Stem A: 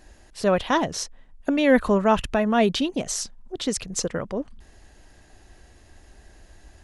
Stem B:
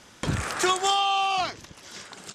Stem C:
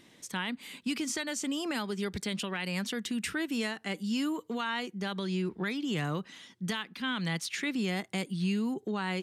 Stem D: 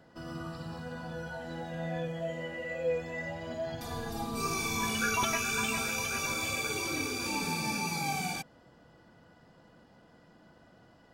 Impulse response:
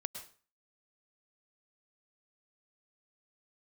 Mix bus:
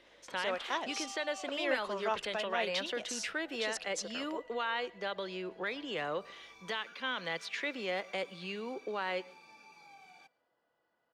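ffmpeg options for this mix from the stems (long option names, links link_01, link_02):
-filter_complex "[0:a]agate=range=-33dB:threshold=-40dB:ratio=3:detection=peak,crystalizer=i=4.5:c=0,aeval=exprs='val(0)+0.00631*(sin(2*PI*50*n/s)+sin(2*PI*2*50*n/s)/2+sin(2*PI*3*50*n/s)/3+sin(2*PI*4*50*n/s)/4+sin(2*PI*5*50*n/s)/5)':channel_layout=same,volume=-14.5dB[link_01];[1:a]acompressor=threshold=-28dB:ratio=6,adelay=50,volume=-16dB[link_02];[2:a]equalizer=frequency=540:width=2.8:gain=9.5,volume=-2.5dB,asplit=2[link_03][link_04];[link_04]volume=-14.5dB[link_05];[3:a]acompressor=threshold=-34dB:ratio=6,adelay=1850,volume=-17.5dB,asplit=2[link_06][link_07];[link_07]volume=-18.5dB[link_08];[4:a]atrim=start_sample=2205[link_09];[link_05][link_08]amix=inputs=2:normalize=0[link_10];[link_10][link_09]afir=irnorm=-1:irlink=0[link_11];[link_01][link_02][link_03][link_06][link_11]amix=inputs=5:normalize=0,acrossover=split=380 4700:gain=0.1 1 0.126[link_12][link_13][link_14];[link_12][link_13][link_14]amix=inputs=3:normalize=0"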